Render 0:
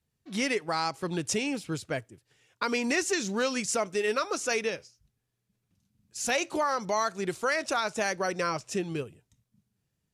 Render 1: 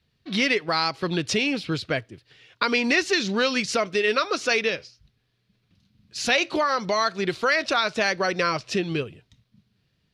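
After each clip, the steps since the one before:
drawn EQ curve 940 Hz 0 dB, 4,300 Hz +7 dB, 7,400 Hz −13 dB
in parallel at +2.5 dB: downward compressor, threshold −36 dBFS, peak gain reduction 14.5 dB
on the sum: notch filter 850 Hz, Q 12
level +2 dB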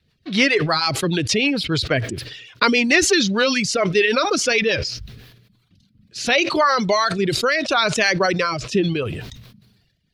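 rotating-speaker cabinet horn 6.7 Hz, later 0.75 Hz, at 0:04.83
reverb reduction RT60 1.1 s
level that may fall only so fast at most 49 dB per second
level +7 dB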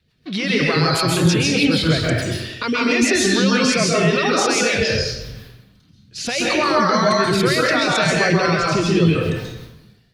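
brickwall limiter −13.5 dBFS, peak gain reduction 11.5 dB
dense smooth reverb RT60 0.91 s, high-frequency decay 0.7×, pre-delay 120 ms, DRR −4 dB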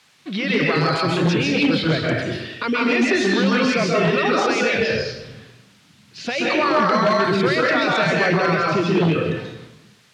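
wave folding −10 dBFS
background noise blue −42 dBFS
band-pass filter 150–3,400 Hz

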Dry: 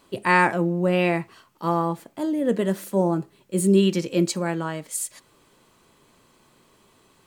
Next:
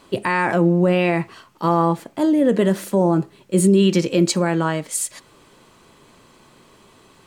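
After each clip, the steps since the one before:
high-shelf EQ 12,000 Hz −11 dB
boost into a limiter +14.5 dB
level −6.5 dB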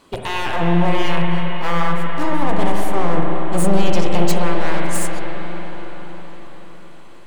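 wavefolder on the positive side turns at −20.5 dBFS
convolution reverb RT60 5.7 s, pre-delay 40 ms, DRR −1 dB
level −2 dB

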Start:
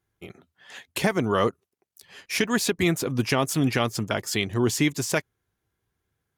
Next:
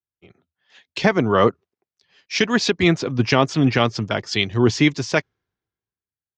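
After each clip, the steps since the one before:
Butterworth low-pass 5,800 Hz 36 dB per octave
multiband upward and downward expander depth 70%
level +5.5 dB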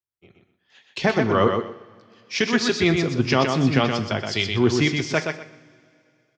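on a send: repeating echo 123 ms, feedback 21%, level −5 dB
on the sum: coupled-rooms reverb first 0.47 s, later 2.6 s, from −19 dB, DRR 10 dB
level −3.5 dB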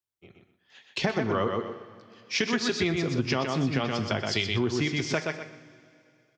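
downward compressor, threshold −23 dBFS, peak gain reduction 10.5 dB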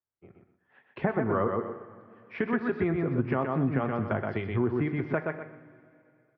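low-pass filter 1,700 Hz 24 dB per octave

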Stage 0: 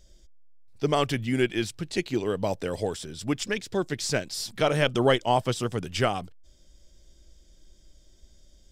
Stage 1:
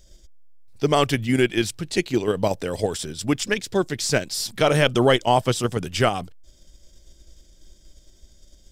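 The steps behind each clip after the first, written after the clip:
in parallel at +2 dB: output level in coarse steps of 13 dB
on the sum: high-shelf EQ 7,800 Hz +5 dB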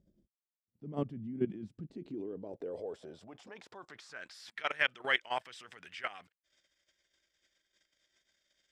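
transient designer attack −4 dB, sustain +5 dB
output level in coarse steps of 18 dB
band-pass filter sweep 210 Hz → 1,900 Hz, 0:01.75–0:04.55

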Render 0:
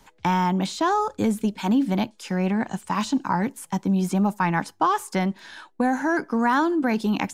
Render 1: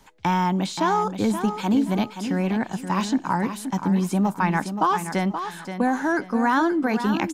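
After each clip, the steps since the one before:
repeating echo 526 ms, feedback 29%, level −9 dB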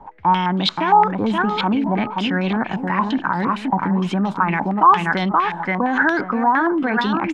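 in parallel at −2 dB: compressor whose output falls as the input rises −29 dBFS
on the sum: brickwall limiter −12.5 dBFS, peak gain reduction 7.5 dB
low-pass on a step sequencer 8.7 Hz 860–3,700 Hz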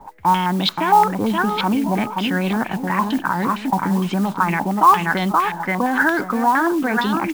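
noise that follows the level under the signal 23 dB

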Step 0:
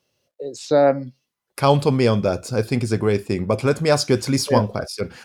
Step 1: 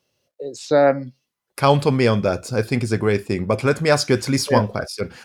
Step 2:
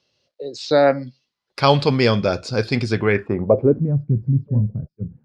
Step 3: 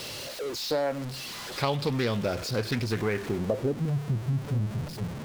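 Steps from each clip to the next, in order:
dynamic equaliser 1,800 Hz, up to +6 dB, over −37 dBFS, Q 1.5
low-pass filter sweep 4,500 Hz → 150 Hz, 0:02.88–0:03.98
converter with a step at zero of −23 dBFS; downward compressor, threshold −15 dBFS, peak gain reduction 7 dB; highs frequency-modulated by the lows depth 0.3 ms; level −8.5 dB

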